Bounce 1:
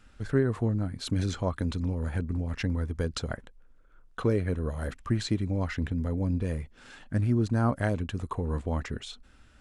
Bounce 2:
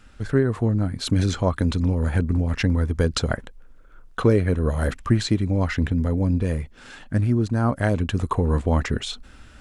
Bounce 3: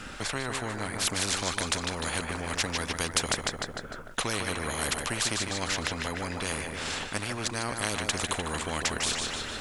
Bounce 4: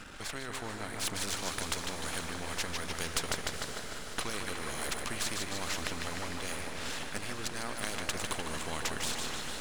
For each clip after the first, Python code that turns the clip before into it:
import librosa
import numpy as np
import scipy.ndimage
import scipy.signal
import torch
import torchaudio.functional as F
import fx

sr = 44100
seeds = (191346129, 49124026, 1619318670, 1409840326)

y1 = fx.rider(x, sr, range_db=10, speed_s=0.5)
y1 = y1 * 10.0 ** (7.5 / 20.0)
y2 = fx.echo_feedback(y1, sr, ms=151, feedback_pct=46, wet_db=-11.5)
y2 = fx.spectral_comp(y2, sr, ratio=4.0)
y2 = y2 * 10.0 ** (-4.0 / 20.0)
y3 = np.where(y2 < 0.0, 10.0 ** (-12.0 / 20.0) * y2, y2)
y3 = fx.echo_diffused(y3, sr, ms=460, feedback_pct=66, wet_db=-8.5)
y3 = y3 * 10.0 ** (-3.0 / 20.0)